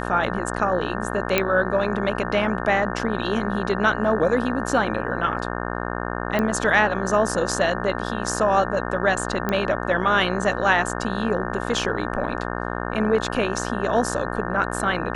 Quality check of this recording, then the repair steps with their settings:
mains buzz 60 Hz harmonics 30 −28 dBFS
0:01.38: click −4 dBFS
0:06.39: click −11 dBFS
0:09.49: click −10 dBFS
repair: click removal
hum removal 60 Hz, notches 30

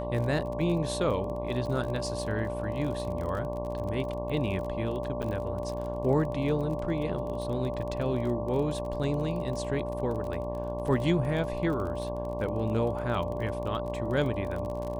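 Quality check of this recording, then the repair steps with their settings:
mains buzz 60 Hz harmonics 19 −36 dBFS
surface crackle 32 per second −35 dBFS
whistle 590 Hz −34 dBFS
0:05.22–0:05.23: drop-out 7.8 ms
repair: click removal
hum removal 60 Hz, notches 19
notch filter 590 Hz, Q 30
repair the gap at 0:05.22, 7.8 ms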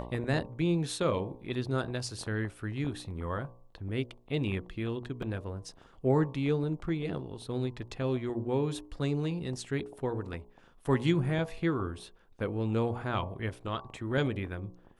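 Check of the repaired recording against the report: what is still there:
none of them is left

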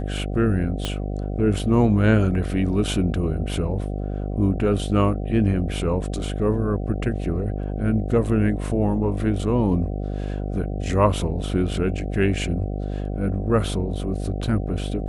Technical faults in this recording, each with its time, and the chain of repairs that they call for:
mains buzz 50 Hz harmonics 15 −27 dBFS
0:00.85: click −11 dBFS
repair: click removal
hum removal 50 Hz, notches 15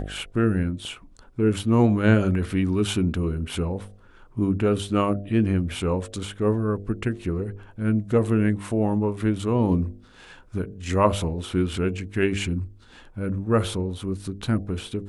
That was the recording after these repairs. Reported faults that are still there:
0:00.85: click

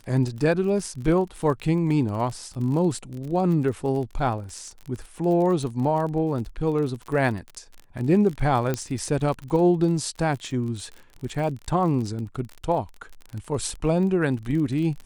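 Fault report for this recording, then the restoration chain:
surface crackle 33 per second −31 dBFS
0:08.74: click −12 dBFS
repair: click removal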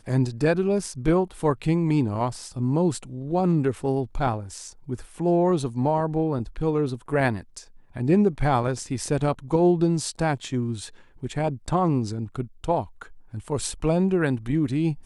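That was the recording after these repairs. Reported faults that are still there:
none of them is left

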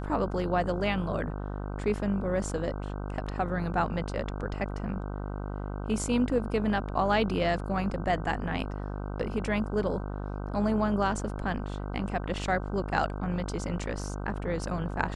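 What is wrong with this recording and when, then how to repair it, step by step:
mains buzz 50 Hz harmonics 31 −35 dBFS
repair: hum removal 50 Hz, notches 31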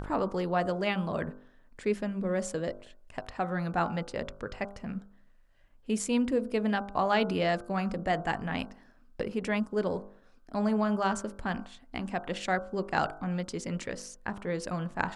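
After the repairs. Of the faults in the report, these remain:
none of them is left

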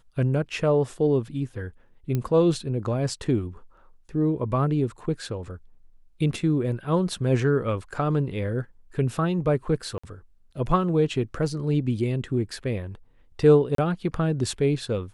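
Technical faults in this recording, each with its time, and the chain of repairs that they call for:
0:02.15: click −14 dBFS
0:09.98–0:10.04: drop-out 55 ms
0:13.75–0:13.78: drop-out 33 ms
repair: click removal
repair the gap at 0:09.98, 55 ms
repair the gap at 0:13.75, 33 ms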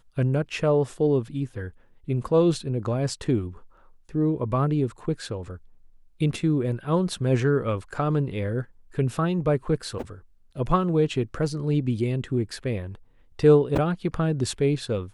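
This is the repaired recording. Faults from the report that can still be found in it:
none of them is left

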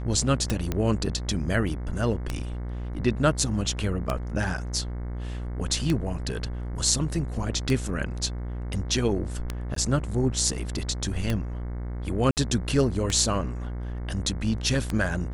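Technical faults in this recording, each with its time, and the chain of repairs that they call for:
mains buzz 60 Hz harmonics 37 −32 dBFS
scratch tick 33 1/3 rpm −12 dBFS
0:00.72: click −13 dBFS
0:09.75–0:09.76: drop-out 13 ms
0:12.31–0:12.37: drop-out 59 ms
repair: click removal
hum removal 60 Hz, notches 37
repair the gap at 0:09.75, 13 ms
repair the gap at 0:12.31, 59 ms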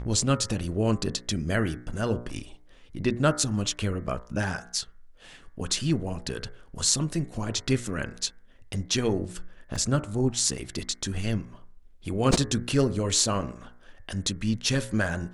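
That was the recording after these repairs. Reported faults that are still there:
none of them is left

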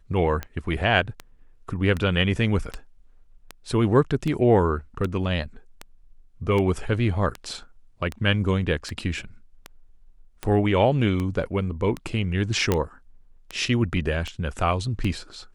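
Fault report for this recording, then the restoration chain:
scratch tick 78 rpm −16 dBFS
0:12.72: click −7 dBFS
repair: click removal

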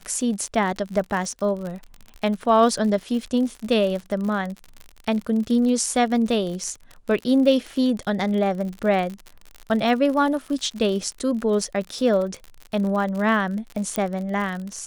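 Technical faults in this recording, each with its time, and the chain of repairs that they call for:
surface crackle 57 per second −29 dBFS
0:13.96: click −9 dBFS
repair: click removal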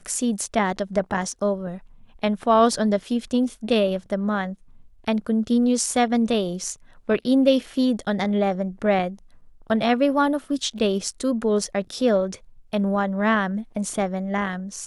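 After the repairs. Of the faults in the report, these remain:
none of them is left

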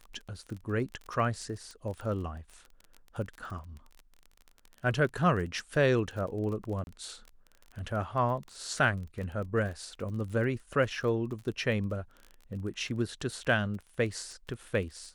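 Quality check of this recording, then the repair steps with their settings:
surface crackle 27 per second −38 dBFS
0:06.84–0:06.87: drop-out 31 ms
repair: click removal
repair the gap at 0:06.84, 31 ms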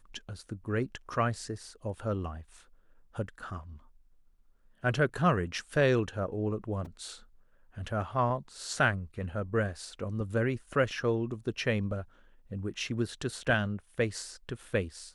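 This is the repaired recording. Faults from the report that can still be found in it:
none of them is left

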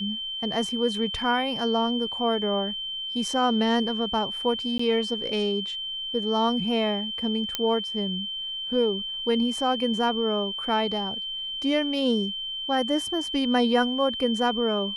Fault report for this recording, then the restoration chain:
whistle 3,100 Hz −30 dBFS
0:04.78–0:04.79: drop-out 14 ms
0:07.55: click −9 dBFS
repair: click removal
notch filter 3,100 Hz, Q 30
repair the gap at 0:04.78, 14 ms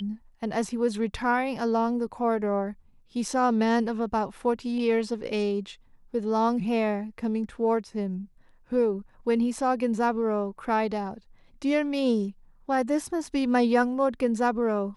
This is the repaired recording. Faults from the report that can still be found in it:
none of them is left

